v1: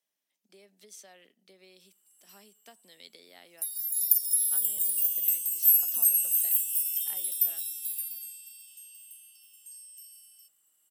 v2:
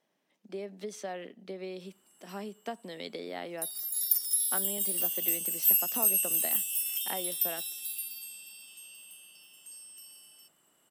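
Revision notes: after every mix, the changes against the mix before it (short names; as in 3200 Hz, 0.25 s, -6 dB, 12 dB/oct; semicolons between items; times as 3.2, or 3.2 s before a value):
master: remove pre-emphasis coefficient 0.9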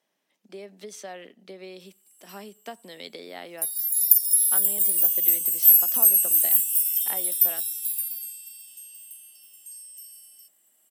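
background: add differentiator; master: add tilt +1.5 dB/oct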